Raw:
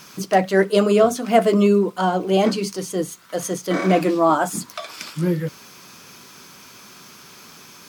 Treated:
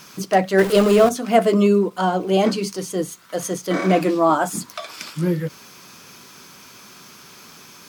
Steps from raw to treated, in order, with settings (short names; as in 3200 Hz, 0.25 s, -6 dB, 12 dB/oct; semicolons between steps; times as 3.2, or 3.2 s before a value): 0.58–1.09 zero-crossing step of -21.5 dBFS; ending taper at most 570 dB/s